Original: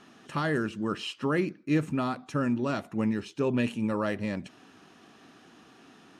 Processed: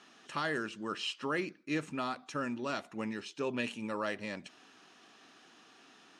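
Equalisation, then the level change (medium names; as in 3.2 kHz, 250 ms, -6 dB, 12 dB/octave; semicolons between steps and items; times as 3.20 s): distance through air 94 m; RIAA curve recording; -3.5 dB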